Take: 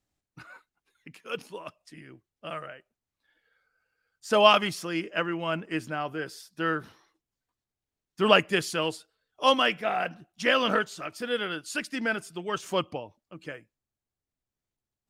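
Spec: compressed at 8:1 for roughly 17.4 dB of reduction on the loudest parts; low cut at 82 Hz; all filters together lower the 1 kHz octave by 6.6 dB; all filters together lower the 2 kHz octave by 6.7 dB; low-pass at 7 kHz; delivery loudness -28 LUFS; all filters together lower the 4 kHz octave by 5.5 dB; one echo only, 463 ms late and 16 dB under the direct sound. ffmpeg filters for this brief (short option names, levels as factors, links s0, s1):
-af "highpass=82,lowpass=7000,equalizer=f=1000:t=o:g=-6.5,equalizer=f=2000:t=o:g=-6,equalizer=f=4000:t=o:g=-4,acompressor=threshold=0.0158:ratio=8,aecho=1:1:463:0.158,volume=5.01"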